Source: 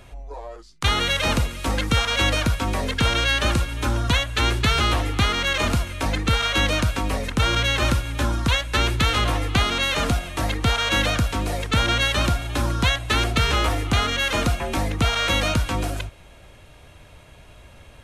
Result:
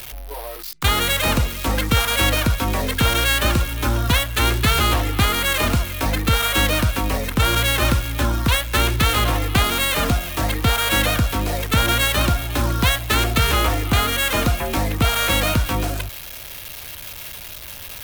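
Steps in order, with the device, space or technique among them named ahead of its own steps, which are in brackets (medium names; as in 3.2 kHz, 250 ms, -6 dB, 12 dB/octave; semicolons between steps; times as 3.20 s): budget class-D amplifier (dead-time distortion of 0.07 ms; zero-crossing glitches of -21 dBFS); trim +2.5 dB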